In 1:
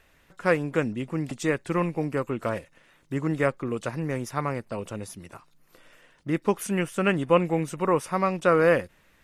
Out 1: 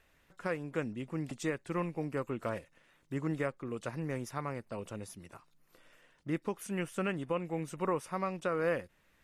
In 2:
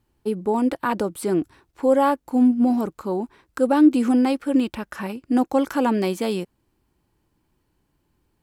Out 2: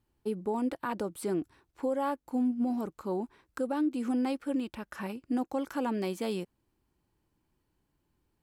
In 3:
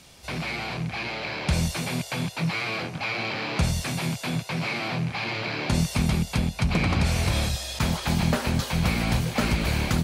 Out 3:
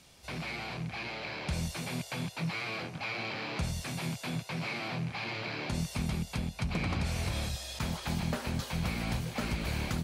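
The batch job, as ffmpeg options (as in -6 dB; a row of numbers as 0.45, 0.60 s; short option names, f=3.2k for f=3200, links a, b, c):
-af "alimiter=limit=-15dB:level=0:latency=1:release=467,volume=-7.5dB"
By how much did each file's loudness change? -10.5, -11.5, -9.0 LU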